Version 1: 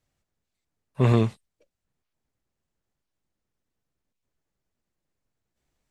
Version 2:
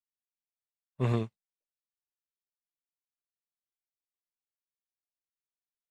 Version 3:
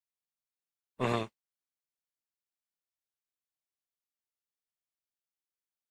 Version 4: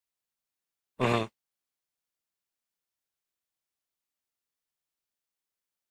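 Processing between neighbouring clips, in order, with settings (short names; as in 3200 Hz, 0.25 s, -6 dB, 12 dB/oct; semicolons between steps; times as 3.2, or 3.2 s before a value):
upward expander 2.5:1, over -39 dBFS; gain -7 dB
spectral limiter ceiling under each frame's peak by 17 dB; gain -2.5 dB
rattling part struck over -35 dBFS, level -29 dBFS; gain +4 dB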